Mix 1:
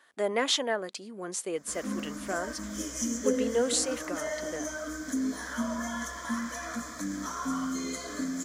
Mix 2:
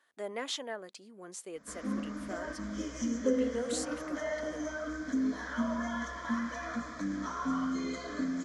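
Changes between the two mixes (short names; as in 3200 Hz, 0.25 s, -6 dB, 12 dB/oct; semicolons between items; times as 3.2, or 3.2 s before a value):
speech -10.0 dB; background: add air absorption 170 m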